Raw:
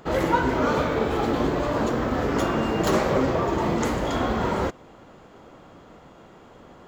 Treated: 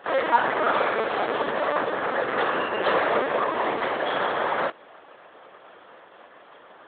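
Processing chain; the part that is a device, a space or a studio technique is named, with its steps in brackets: talking toy (LPC vocoder at 8 kHz pitch kept; high-pass 520 Hz 12 dB/octave; peaking EQ 1.7 kHz +5.5 dB 0.24 oct); trim +4 dB

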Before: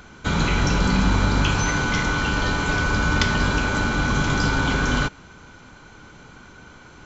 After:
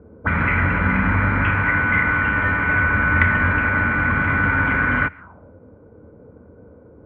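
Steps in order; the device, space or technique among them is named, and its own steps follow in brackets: envelope filter bass rig (touch-sensitive low-pass 390–2000 Hz up, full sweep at -23.5 dBFS; cabinet simulation 72–2300 Hz, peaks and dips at 86 Hz +8 dB, 150 Hz -6 dB, 380 Hz -8 dB, 790 Hz -6 dB); trim +1 dB

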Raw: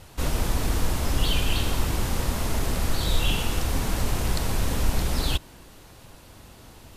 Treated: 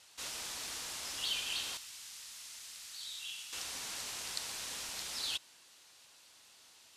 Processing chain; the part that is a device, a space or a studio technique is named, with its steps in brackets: piezo pickup straight into a mixer (low-pass 6.1 kHz 12 dB/octave; differentiator); 1.77–3.53 s: amplifier tone stack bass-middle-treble 5-5-5; trim +1 dB

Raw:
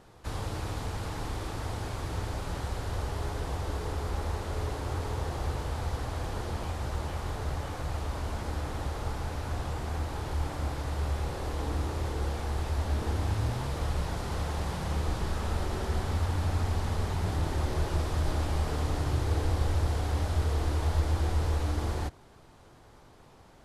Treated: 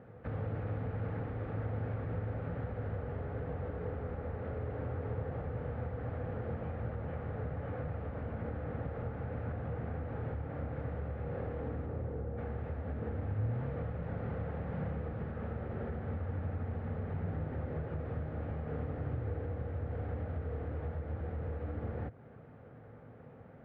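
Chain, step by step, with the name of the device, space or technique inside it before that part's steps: 11.85–12.37 s: peaking EQ 3.2 kHz -5 dB -> -12 dB 3 oct; bass amplifier (compression 4:1, threshold -36 dBFS, peak gain reduction 13.5 dB; cabinet simulation 75–2000 Hz, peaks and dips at 110 Hz +8 dB, 160 Hz +6 dB, 240 Hz +7 dB, 350 Hz -5 dB, 490 Hz +9 dB, 990 Hz -10 dB)

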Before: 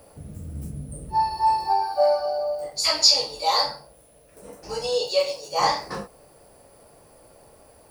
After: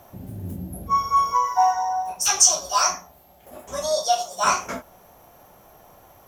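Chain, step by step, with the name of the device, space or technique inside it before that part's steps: nightcore (tape speed +26%); trim +1.5 dB

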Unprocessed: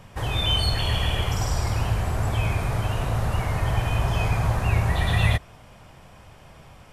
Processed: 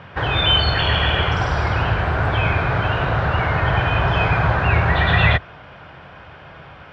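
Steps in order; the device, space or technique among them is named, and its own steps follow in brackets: guitar cabinet (cabinet simulation 79–3700 Hz, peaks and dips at 110 Hz -5 dB, 220 Hz -7 dB, 1.5 kHz +9 dB); trim +8.5 dB

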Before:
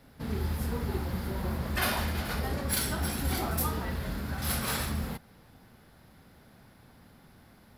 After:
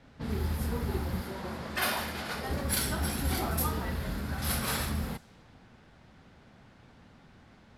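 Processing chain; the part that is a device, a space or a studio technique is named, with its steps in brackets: 1.22–2.49 s: high-pass 290 Hz 6 dB/octave; cassette deck with a dynamic noise filter (white noise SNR 27 dB; level-controlled noise filter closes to 2.9 kHz, open at -29.5 dBFS)

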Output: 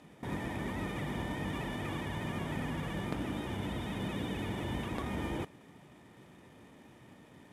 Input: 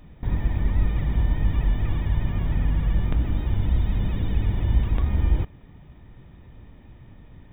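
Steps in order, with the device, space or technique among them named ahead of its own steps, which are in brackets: early wireless headset (high-pass 240 Hz 12 dB/octave; CVSD coder 64 kbps)

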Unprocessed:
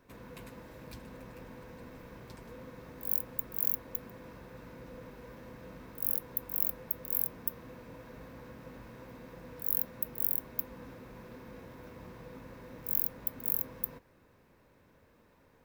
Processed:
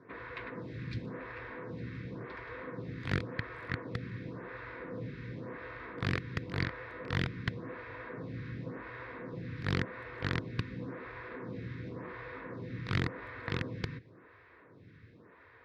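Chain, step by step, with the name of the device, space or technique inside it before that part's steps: vibe pedal into a guitar amplifier (lamp-driven phase shifter 0.92 Hz; valve stage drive 21 dB, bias 0.7; cabinet simulation 92–3700 Hz, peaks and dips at 110 Hz +7 dB, 230 Hz -7 dB, 570 Hz -9 dB, 830 Hz -10 dB, 1.9 kHz +5 dB, 2.9 kHz -7 dB); trim +16 dB

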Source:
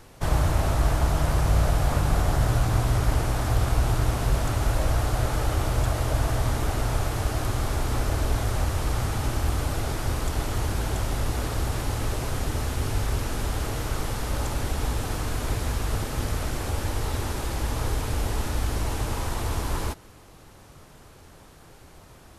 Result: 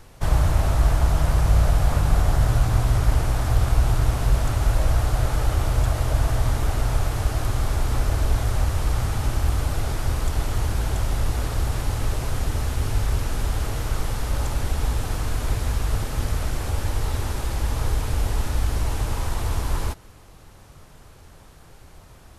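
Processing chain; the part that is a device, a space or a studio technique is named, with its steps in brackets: low shelf boost with a cut just above (bass shelf 81 Hz +6.5 dB; peaking EQ 310 Hz -2.5 dB 1.1 oct)

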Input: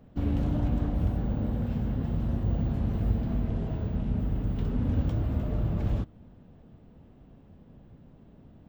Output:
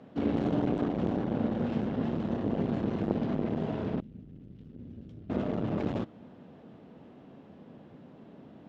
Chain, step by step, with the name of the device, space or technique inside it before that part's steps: public-address speaker with an overloaded transformer (transformer saturation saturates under 310 Hz; band-pass 230–5400 Hz); 4.00–5.30 s: amplifier tone stack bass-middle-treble 10-0-1; trim +7.5 dB

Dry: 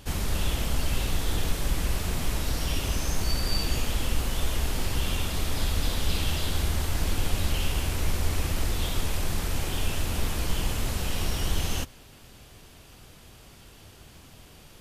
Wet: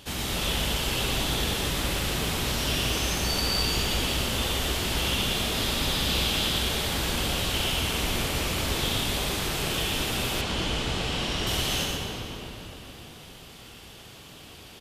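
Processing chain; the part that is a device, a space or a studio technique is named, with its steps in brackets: PA in a hall (high-pass 150 Hz 6 dB/octave; peaking EQ 3.4 kHz +6 dB 0.81 oct; delay 119 ms -4 dB; reverberation RT60 4.0 s, pre-delay 13 ms, DRR 0 dB); 10.41–11.47 s: distance through air 63 m

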